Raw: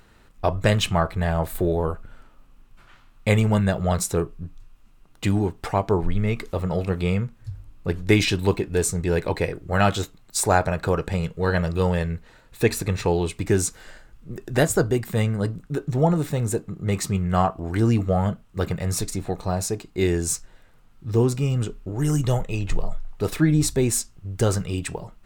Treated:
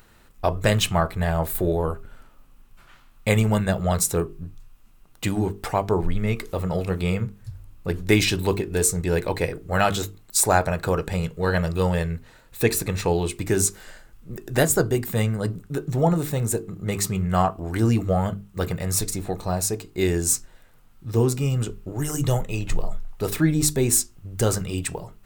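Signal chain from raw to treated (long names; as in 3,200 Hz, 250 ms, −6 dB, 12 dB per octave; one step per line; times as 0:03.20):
high-shelf EQ 10,000 Hz +12 dB
mains-hum notches 50/100/150/200/250/300/350/400/450 Hz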